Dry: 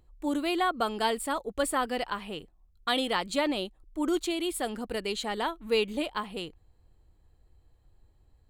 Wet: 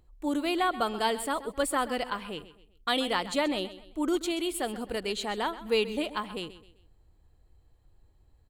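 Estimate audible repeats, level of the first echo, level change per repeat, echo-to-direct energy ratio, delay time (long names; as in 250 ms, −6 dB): 3, −15.0 dB, −8.5 dB, −14.5 dB, 130 ms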